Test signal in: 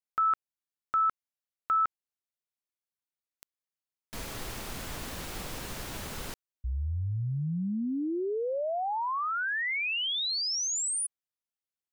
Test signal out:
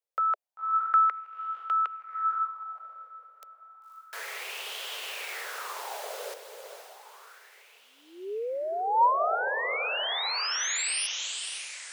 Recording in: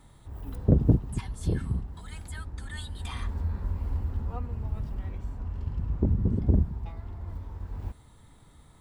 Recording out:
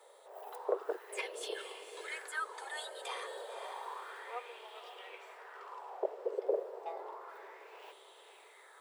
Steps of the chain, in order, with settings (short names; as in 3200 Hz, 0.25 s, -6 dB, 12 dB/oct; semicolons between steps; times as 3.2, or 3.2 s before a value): steep high-pass 400 Hz 72 dB/oct; diffused feedback echo 0.532 s, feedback 51%, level -8 dB; LFO bell 0.31 Hz 510–3100 Hz +14 dB; gain -1.5 dB